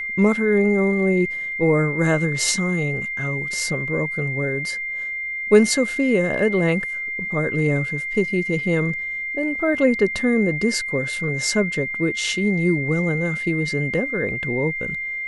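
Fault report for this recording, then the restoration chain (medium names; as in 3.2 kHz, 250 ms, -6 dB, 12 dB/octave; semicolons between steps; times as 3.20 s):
whine 2.1 kHz -25 dBFS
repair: band-stop 2.1 kHz, Q 30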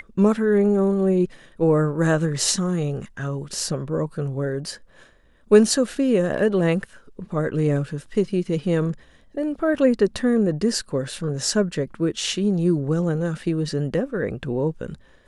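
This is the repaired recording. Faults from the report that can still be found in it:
nothing left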